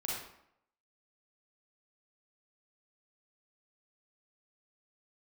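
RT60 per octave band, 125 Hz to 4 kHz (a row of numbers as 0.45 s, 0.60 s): 0.65 s, 0.70 s, 0.70 s, 0.75 s, 0.65 s, 0.50 s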